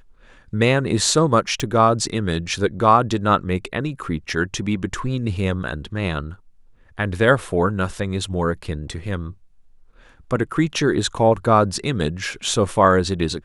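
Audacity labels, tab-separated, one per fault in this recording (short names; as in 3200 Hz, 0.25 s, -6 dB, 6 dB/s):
1.600000	1.600000	pop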